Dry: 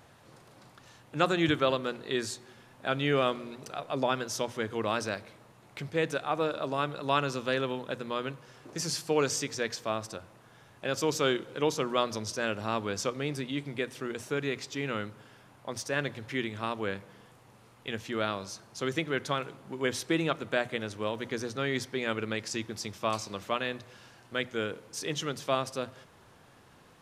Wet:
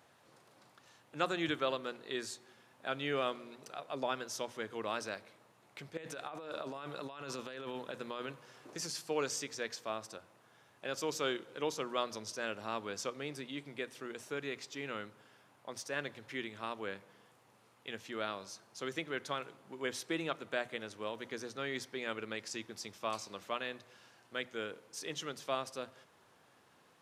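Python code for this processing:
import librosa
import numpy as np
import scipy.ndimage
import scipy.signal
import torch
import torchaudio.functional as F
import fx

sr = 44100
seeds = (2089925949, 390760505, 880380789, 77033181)

y = fx.over_compress(x, sr, threshold_db=-35.0, ratio=-1.0, at=(5.97, 8.95))
y = fx.highpass(y, sr, hz=290.0, slope=6)
y = F.gain(torch.from_numpy(y), -6.5).numpy()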